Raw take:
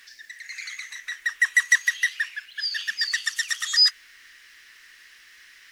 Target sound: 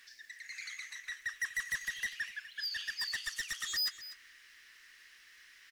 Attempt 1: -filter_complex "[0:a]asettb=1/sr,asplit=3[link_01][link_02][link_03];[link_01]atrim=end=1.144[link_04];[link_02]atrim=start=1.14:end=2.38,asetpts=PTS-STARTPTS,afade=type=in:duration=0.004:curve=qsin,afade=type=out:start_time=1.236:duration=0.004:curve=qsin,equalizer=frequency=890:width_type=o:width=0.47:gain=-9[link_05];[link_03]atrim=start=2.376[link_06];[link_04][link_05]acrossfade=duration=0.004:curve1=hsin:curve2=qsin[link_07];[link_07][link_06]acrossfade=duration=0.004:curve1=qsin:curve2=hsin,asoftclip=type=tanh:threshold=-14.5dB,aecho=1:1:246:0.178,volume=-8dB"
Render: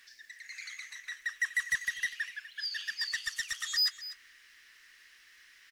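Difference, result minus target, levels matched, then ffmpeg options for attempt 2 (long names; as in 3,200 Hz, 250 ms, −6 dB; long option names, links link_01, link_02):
soft clipping: distortion −7 dB
-filter_complex "[0:a]asettb=1/sr,asplit=3[link_01][link_02][link_03];[link_01]atrim=end=1.144[link_04];[link_02]atrim=start=1.14:end=2.38,asetpts=PTS-STARTPTS,afade=type=in:duration=0.004:curve=qsin,afade=type=out:start_time=1.236:duration=0.004:curve=qsin,equalizer=frequency=890:width_type=o:width=0.47:gain=-9[link_05];[link_03]atrim=start=2.376[link_06];[link_04][link_05]acrossfade=duration=0.004:curve1=hsin:curve2=qsin[link_07];[link_07][link_06]acrossfade=duration=0.004:curve1=qsin:curve2=hsin,asoftclip=type=tanh:threshold=-22.5dB,aecho=1:1:246:0.178,volume=-8dB"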